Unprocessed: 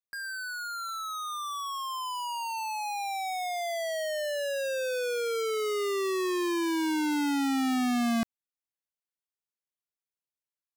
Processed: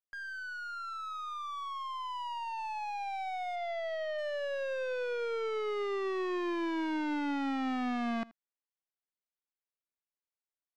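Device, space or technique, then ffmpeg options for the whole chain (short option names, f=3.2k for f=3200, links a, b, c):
crystal radio: -filter_complex "[0:a]asplit=3[a][b][c];[a]afade=t=out:st=3.55:d=0.02[d];[b]lowpass=f=5.3k:w=0.5412,lowpass=f=5.3k:w=1.3066,afade=t=in:st=3.55:d=0.02,afade=t=out:st=4.17:d=0.02[e];[c]afade=t=in:st=4.17:d=0.02[f];[d][e][f]amix=inputs=3:normalize=0,highpass=250,lowpass=2.7k,aeval=exprs='if(lt(val(0),0),0.708*val(0),val(0))':c=same,aecho=1:1:80:0.0794,volume=-2.5dB"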